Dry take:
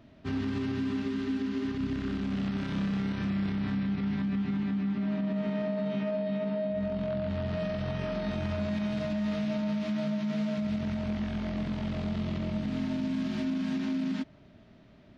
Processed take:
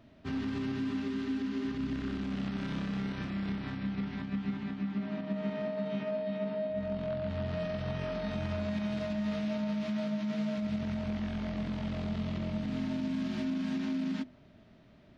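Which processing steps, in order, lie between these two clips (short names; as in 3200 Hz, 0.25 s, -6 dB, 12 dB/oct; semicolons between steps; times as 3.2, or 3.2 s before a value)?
notches 50/100/150/200/250/300/350/400 Hz; gain -2 dB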